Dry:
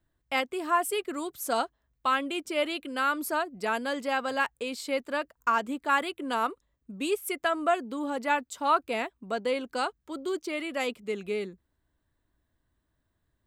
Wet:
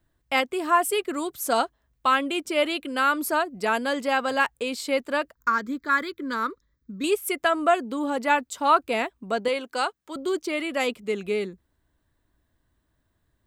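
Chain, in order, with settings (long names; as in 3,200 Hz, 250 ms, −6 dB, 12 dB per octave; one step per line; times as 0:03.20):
0:05.34–0:07.04: phaser with its sweep stopped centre 2,800 Hz, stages 6
0:09.48–0:10.16: high-pass filter 480 Hz 6 dB per octave
level +5 dB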